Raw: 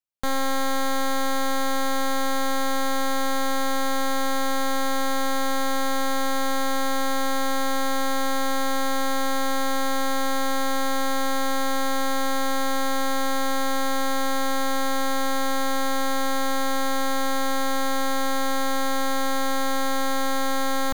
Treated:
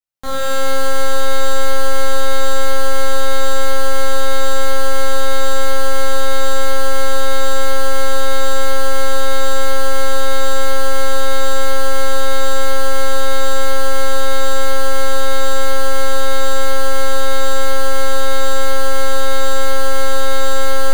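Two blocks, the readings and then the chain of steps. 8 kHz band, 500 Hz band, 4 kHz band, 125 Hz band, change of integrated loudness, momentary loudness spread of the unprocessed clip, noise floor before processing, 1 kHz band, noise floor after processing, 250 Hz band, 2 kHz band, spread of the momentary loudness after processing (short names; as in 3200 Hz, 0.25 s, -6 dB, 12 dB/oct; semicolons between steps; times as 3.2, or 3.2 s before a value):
+6.0 dB, +9.5 dB, +6.0 dB, n/a, +5.5 dB, 0 LU, -22 dBFS, +3.5 dB, -6 dBFS, -4.5 dB, +6.0 dB, 0 LU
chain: shimmer reverb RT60 1.9 s, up +12 st, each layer -8 dB, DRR -8 dB; gain -4.5 dB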